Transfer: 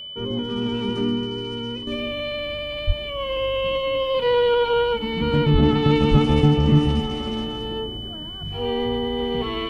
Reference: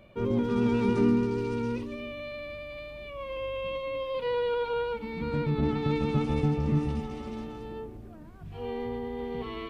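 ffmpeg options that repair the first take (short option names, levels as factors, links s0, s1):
-filter_complex "[0:a]bandreject=f=3000:w=30,asplit=3[s0][s1][s2];[s0]afade=t=out:st=2.86:d=0.02[s3];[s1]highpass=f=140:w=0.5412,highpass=f=140:w=1.3066,afade=t=in:st=2.86:d=0.02,afade=t=out:st=2.98:d=0.02[s4];[s2]afade=t=in:st=2.98:d=0.02[s5];[s3][s4][s5]amix=inputs=3:normalize=0,asplit=3[s6][s7][s8];[s6]afade=t=out:st=5.52:d=0.02[s9];[s7]highpass=f=140:w=0.5412,highpass=f=140:w=1.3066,afade=t=in:st=5.52:d=0.02,afade=t=out:st=5.64:d=0.02[s10];[s8]afade=t=in:st=5.64:d=0.02[s11];[s9][s10][s11]amix=inputs=3:normalize=0,asplit=3[s12][s13][s14];[s12]afade=t=out:st=6.1:d=0.02[s15];[s13]highpass=f=140:w=0.5412,highpass=f=140:w=1.3066,afade=t=in:st=6.1:d=0.02,afade=t=out:st=6.22:d=0.02[s16];[s14]afade=t=in:st=6.22:d=0.02[s17];[s15][s16][s17]amix=inputs=3:normalize=0,asetnsamples=n=441:p=0,asendcmd='1.87 volume volume -10dB',volume=1"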